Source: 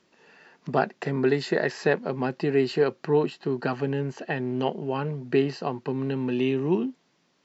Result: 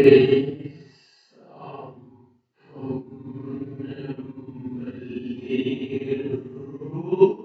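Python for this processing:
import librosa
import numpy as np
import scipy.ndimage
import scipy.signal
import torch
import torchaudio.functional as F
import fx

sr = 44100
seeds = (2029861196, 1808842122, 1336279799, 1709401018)

p1 = x + 0.48 * np.pad(x, (int(7.4 * sr / 1000.0), 0))[:len(x)]
p2 = fx.paulstretch(p1, sr, seeds[0], factor=5.2, window_s=0.05, from_s=5.35)
p3 = p2 + fx.room_flutter(p2, sr, wall_m=7.1, rt60_s=0.33, dry=0)
p4 = fx.upward_expand(p3, sr, threshold_db=-28.0, expansion=2.5)
y = F.gain(torch.from_numpy(p4), 5.5).numpy()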